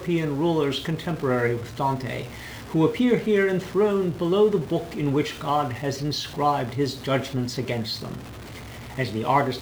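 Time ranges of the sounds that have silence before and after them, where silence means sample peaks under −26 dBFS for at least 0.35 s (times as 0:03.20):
0:02.74–0:08.13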